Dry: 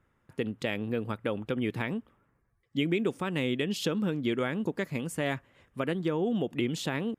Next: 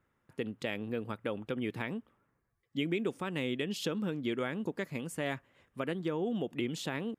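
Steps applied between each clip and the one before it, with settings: low shelf 92 Hz -7 dB; gain -4 dB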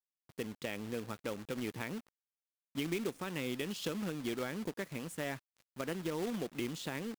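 companded quantiser 4-bit; gain -4 dB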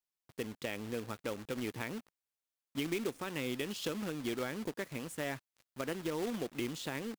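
bell 180 Hz -5 dB 0.37 oct; gain +1 dB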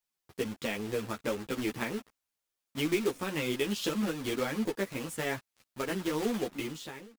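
ending faded out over 0.81 s; ensemble effect; gain +8.5 dB

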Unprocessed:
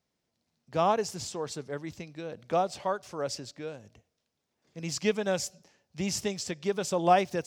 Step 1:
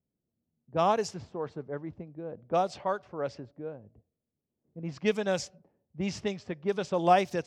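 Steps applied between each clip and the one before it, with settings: low-pass opened by the level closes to 350 Hz, open at -23 dBFS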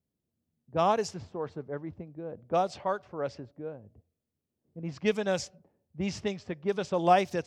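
bell 86 Hz +7 dB 0.28 oct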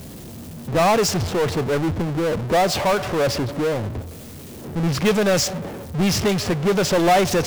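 power-law curve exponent 0.35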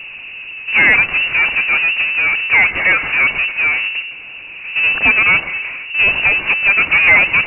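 inverted band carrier 2800 Hz; gain +6 dB

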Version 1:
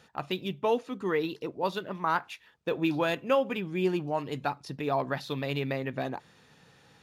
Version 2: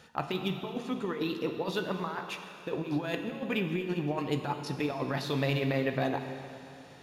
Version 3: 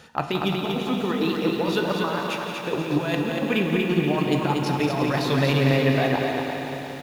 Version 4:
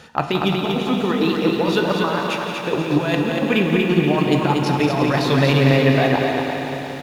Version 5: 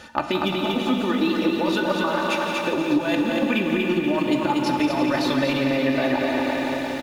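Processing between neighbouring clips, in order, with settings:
negative-ratio compressor -31 dBFS, ratio -0.5; on a send at -5.5 dB: reverb RT60 2.6 s, pre-delay 5 ms
on a send: feedback echo 0.238 s, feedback 45%, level -4.5 dB; on the sum: lo-fi delay 0.172 s, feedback 80%, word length 9-bit, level -9 dB; gain +7 dB
high shelf 11000 Hz -7 dB; gain +5 dB
compressor 3:1, threshold -21 dBFS, peak gain reduction 8.5 dB; comb 3.4 ms, depth 69%

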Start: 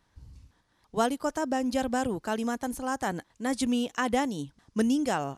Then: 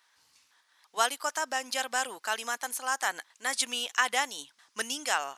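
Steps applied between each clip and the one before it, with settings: HPF 1300 Hz 12 dB/oct; gain +7.5 dB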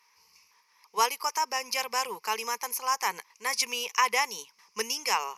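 ripple EQ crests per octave 0.82, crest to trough 16 dB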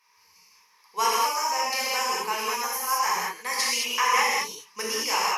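non-linear reverb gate 0.24 s flat, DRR -7 dB; gain -3.5 dB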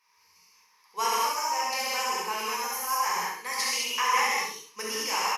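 feedback echo 68 ms, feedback 28%, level -5.5 dB; gain -4 dB

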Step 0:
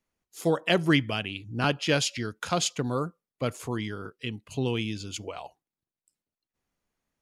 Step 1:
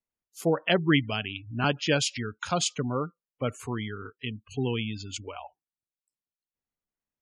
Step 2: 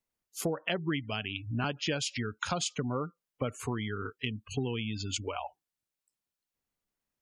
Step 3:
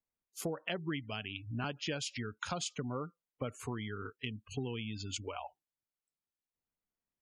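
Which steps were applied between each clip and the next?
spectral noise reduction 13 dB; spectral gate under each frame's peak -25 dB strong
compressor 6:1, threshold -34 dBFS, peak gain reduction 16 dB; gain +4.5 dB
mismatched tape noise reduction decoder only; gain -5.5 dB

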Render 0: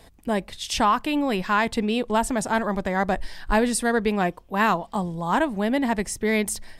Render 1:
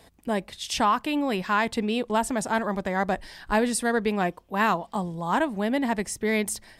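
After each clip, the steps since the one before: HPF 83 Hz 6 dB/oct; gain -2 dB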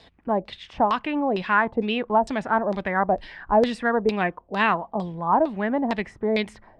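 LFO low-pass saw down 2.2 Hz 520–4600 Hz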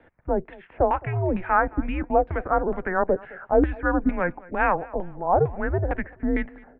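feedback echo 0.215 s, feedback 31%, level -22.5 dB; mistuned SSB -180 Hz 190–2300 Hz

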